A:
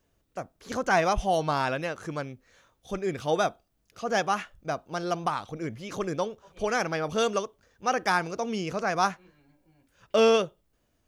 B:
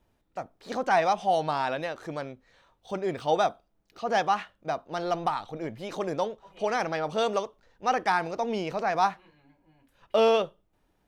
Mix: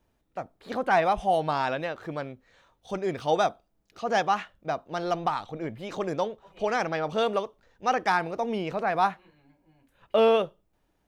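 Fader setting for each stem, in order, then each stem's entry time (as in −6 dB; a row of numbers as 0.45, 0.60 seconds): −10.0, −2.0 decibels; 0.00, 0.00 seconds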